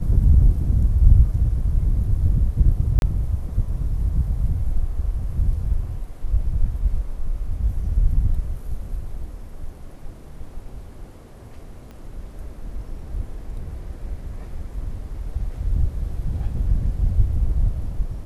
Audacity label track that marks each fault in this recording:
2.990000	3.020000	dropout 31 ms
11.910000	11.910000	pop -28 dBFS

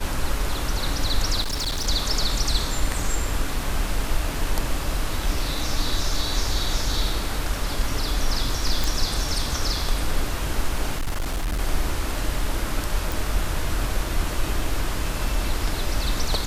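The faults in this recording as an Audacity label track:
1.410000	1.880000	clipped -22.5 dBFS
8.840000	8.840000	pop
10.940000	11.590000	clipped -21.5 dBFS
13.120000	13.120000	pop

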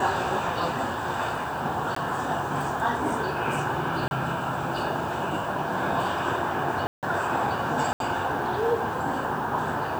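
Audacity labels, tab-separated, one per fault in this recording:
1.950000	1.960000	dropout 14 ms
4.080000	4.110000	dropout 31 ms
6.870000	7.030000	dropout 158 ms
7.930000	8.000000	dropout 72 ms

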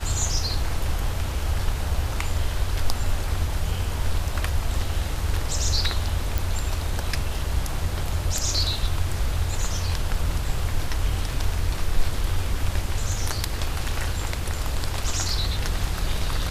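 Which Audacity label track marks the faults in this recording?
6.380000	6.380000	pop

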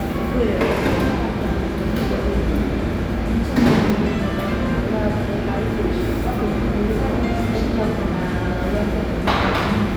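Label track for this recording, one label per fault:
3.900000	3.900000	dropout 2.5 ms

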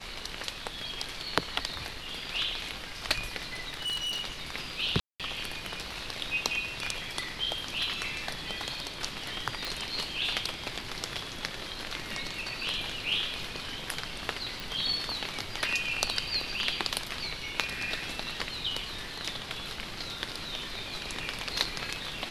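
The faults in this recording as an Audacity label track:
3.540000	4.230000	clipped -29 dBFS
5.000000	5.200000	dropout 197 ms
9.650000	9.650000	pop
14.600000	14.600000	pop

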